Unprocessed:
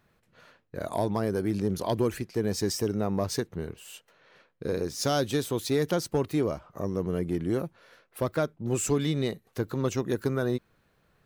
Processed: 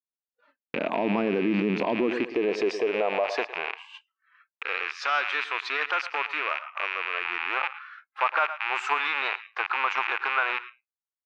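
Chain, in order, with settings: rattling part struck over -43 dBFS, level -23 dBFS; HPF 120 Hz 12 dB/oct; low shelf 330 Hz -5 dB; feedback echo 0.11 s, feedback 34%, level -17 dB; high-pass sweep 240 Hz -> 1300 Hz, 1.92–4.27; Bessel low-pass 2400 Hz, order 4; limiter -25.5 dBFS, peak gain reduction 11.5 dB; spectral noise reduction 22 dB; bell 840 Hz +3 dB 0.56 oct, from 7.25 s +14 dB; expander -48 dBFS; gain +9 dB

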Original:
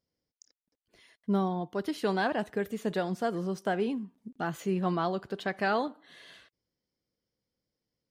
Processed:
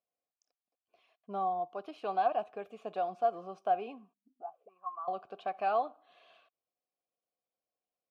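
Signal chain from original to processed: 4.13–5.08 auto-wah 200–1100 Hz, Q 10, up, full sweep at -26 dBFS; vowel filter a; gain +6 dB

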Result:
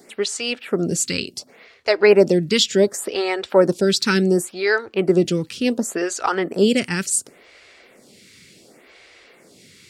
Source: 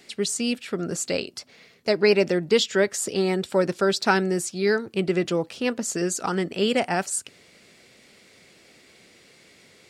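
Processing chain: photocell phaser 0.69 Hz; gain +8 dB

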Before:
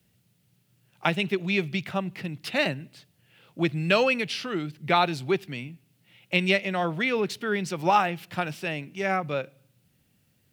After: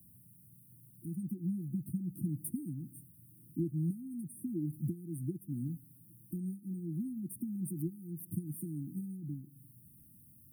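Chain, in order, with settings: high shelf 9200 Hz +10 dB; compressor 6:1, threshold -35 dBFS, peak gain reduction 18 dB; brick-wall FIR band-stop 350–8500 Hz; gain +5 dB

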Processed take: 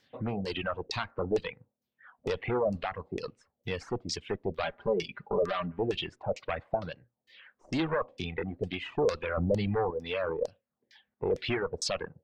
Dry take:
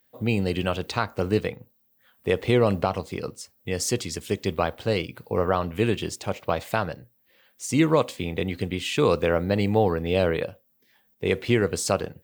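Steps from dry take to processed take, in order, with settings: tube stage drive 20 dB, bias 0.4; 4.63–5.79 comb 5 ms, depth 82%; 9.37–9.91 low shelf 310 Hz +10 dB; compressor 1.5:1, threshold -50 dBFS, peak gain reduction 11.5 dB; LFO low-pass saw down 2.2 Hz 490–5900 Hz; reverb removal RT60 1.4 s; gain +5 dB

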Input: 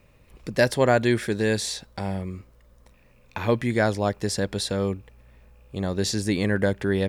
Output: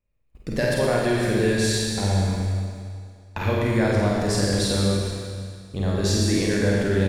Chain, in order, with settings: gate -45 dBFS, range -29 dB; low shelf 78 Hz +11.5 dB; compressor, threshold -22 dBFS, peak gain reduction 8.5 dB; reverse bouncing-ball echo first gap 50 ms, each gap 1.3×, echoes 5; Schroeder reverb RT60 2.1 s, combs from 28 ms, DRR -1.5 dB

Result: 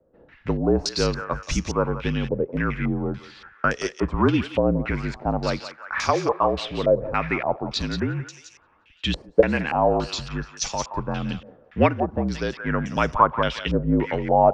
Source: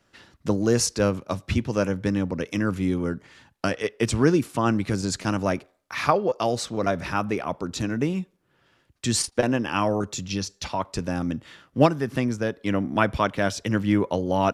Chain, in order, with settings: frequency shift -47 Hz; thinning echo 0.176 s, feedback 67%, high-pass 1100 Hz, level -8 dB; stepped low-pass 3.5 Hz 530–6200 Hz; gain -1 dB

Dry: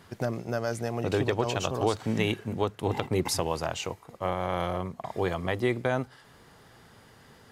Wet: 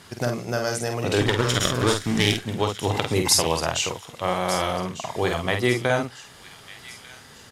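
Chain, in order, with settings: 1.21–2.44 minimum comb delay 0.56 ms; LPF 12000 Hz 12 dB/oct; high shelf 2300 Hz +10 dB; doubler 49 ms -5 dB; thin delay 1.198 s, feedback 42%, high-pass 2200 Hz, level -13 dB; gain +3 dB

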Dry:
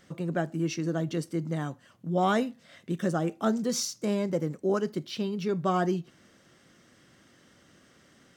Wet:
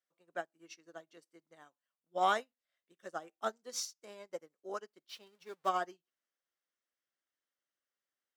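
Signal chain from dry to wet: 5.09–5.69 zero-crossing step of -38 dBFS; HPF 610 Hz 12 dB/oct; upward expander 2.5:1, over -48 dBFS

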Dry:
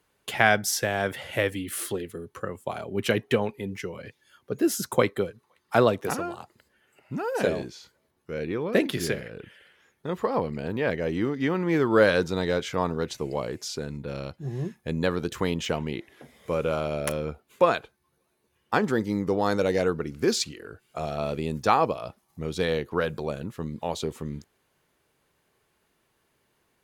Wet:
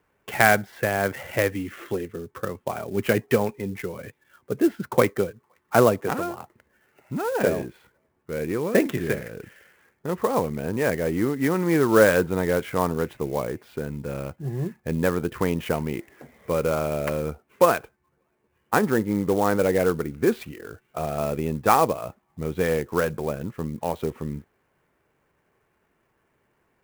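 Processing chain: LPF 2500 Hz 24 dB/oct; clock jitter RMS 0.031 ms; gain +3 dB

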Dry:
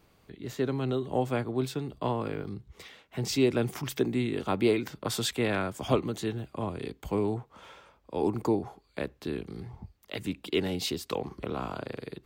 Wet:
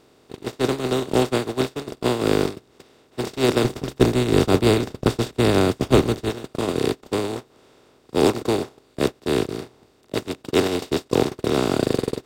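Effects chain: per-bin compression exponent 0.2; gate -17 dBFS, range -34 dB; 3.64–6.3 low shelf 160 Hz +11.5 dB; gain +3.5 dB

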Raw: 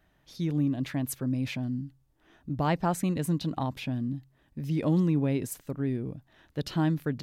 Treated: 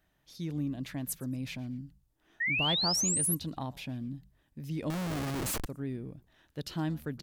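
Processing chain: high shelf 4000 Hz +7.5 dB; frequency-shifting echo 0.117 s, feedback 31%, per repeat -90 Hz, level -22 dB; 2.4–3.35 painted sound rise 1800–12000 Hz -23 dBFS; 4.9–5.66 Schmitt trigger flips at -41.5 dBFS; gain -7 dB

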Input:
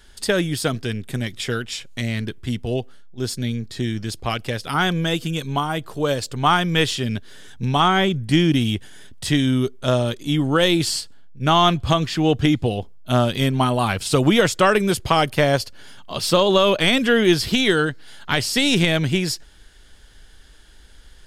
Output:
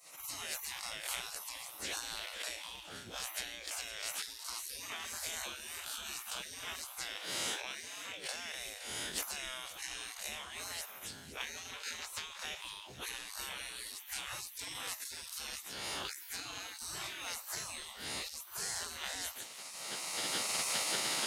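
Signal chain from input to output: time blur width 99 ms; recorder AGC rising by 18 dB/s; 5.44–6.43 bell 2000 Hz -14.5 dB 0.38 oct; compressor 6:1, threshold -25 dBFS, peak gain reduction 12 dB; spectral gate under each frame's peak -30 dB weak; 7.14–8.57 HPF 120 Hz 12 dB/oct; thin delay 0.514 s, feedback 54%, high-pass 2200 Hz, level -13.5 dB; gain +5.5 dB

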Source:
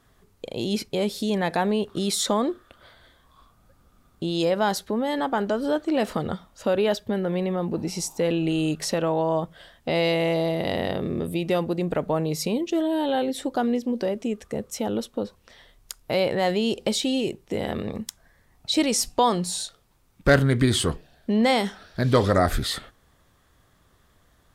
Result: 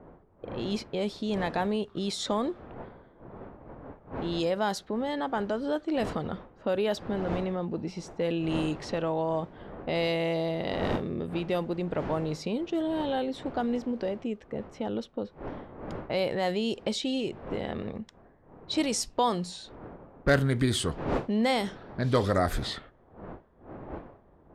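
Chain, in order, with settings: wind noise 590 Hz -37 dBFS; low-pass opened by the level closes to 1200 Hz, open at -17 dBFS; gain -5.5 dB

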